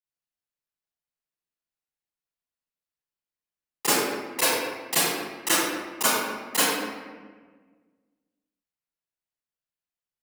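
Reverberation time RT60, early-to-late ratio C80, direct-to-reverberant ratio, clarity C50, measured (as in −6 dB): 1.5 s, −1.5 dB, −15.0 dB, −5.5 dB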